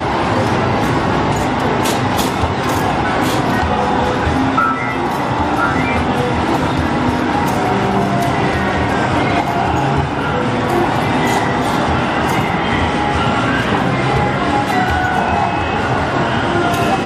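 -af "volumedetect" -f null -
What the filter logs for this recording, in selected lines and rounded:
mean_volume: -15.3 dB
max_volume: -1.9 dB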